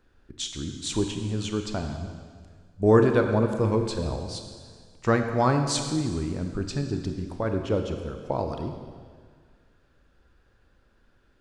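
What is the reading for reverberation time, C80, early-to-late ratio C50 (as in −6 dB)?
1.8 s, 7.0 dB, 6.0 dB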